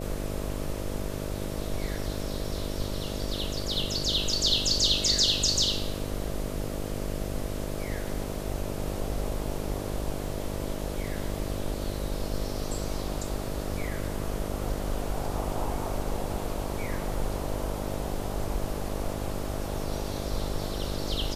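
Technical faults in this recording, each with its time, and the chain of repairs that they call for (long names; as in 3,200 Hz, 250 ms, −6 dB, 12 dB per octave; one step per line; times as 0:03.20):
mains buzz 50 Hz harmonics 13 −35 dBFS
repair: hum removal 50 Hz, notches 13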